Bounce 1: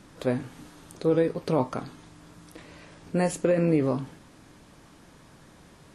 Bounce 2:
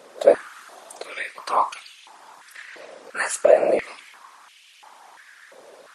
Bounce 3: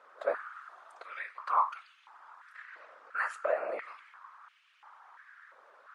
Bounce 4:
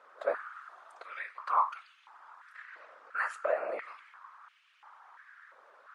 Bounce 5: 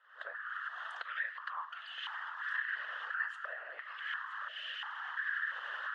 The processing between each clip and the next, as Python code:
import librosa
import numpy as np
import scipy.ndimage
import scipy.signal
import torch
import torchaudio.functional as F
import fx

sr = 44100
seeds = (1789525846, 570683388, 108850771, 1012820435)

y1 = fx.dynamic_eq(x, sr, hz=8500.0, q=1.5, threshold_db=-60.0, ratio=4.0, max_db=6)
y1 = fx.whisperise(y1, sr, seeds[0])
y1 = fx.filter_held_highpass(y1, sr, hz=2.9, low_hz=530.0, high_hz=2700.0)
y1 = F.gain(torch.from_numpy(y1), 4.5).numpy()
y2 = fx.bandpass_q(y1, sr, hz=1300.0, q=3.3)
y2 = F.gain(torch.from_numpy(y2), -1.0).numpy()
y3 = y2
y4 = fx.recorder_agc(y3, sr, target_db=-23.5, rise_db_per_s=74.0, max_gain_db=30)
y4 = fx.double_bandpass(y4, sr, hz=2300.0, octaves=0.76)
y4 = y4 + 10.0 ** (-13.0 / 20.0) * np.pad(y4, (int(968 * sr / 1000.0), 0))[:len(y4)]